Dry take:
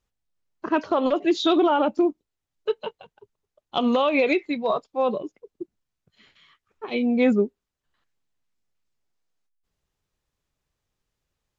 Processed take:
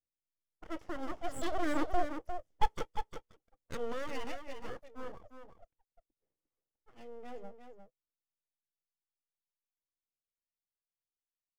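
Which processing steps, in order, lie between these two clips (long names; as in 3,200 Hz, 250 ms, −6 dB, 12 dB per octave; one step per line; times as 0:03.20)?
source passing by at 0:02.49, 9 m/s, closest 1.8 metres
low-pass that shuts in the quiet parts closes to 530 Hz, open at −49.5 dBFS
full-wave rectification
thirty-one-band graphic EQ 315 Hz +5 dB, 500 Hz +8 dB, 1,000 Hz −3 dB, 1,600 Hz −4 dB, 2,500 Hz −6 dB, 4,000 Hz −9 dB
single-tap delay 353 ms −8 dB
level +2 dB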